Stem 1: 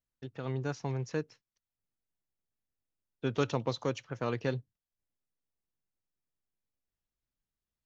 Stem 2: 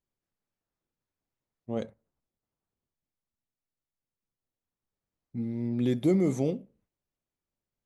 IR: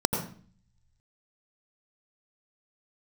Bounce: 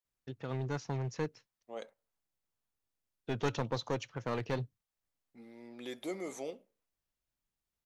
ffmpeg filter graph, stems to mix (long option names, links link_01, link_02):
-filter_complex "[0:a]aeval=exprs='clip(val(0),-1,0.0299)':channel_layout=same,adelay=50,volume=-0.5dB[link_01];[1:a]highpass=670,volume=-3dB[link_02];[link_01][link_02]amix=inputs=2:normalize=0"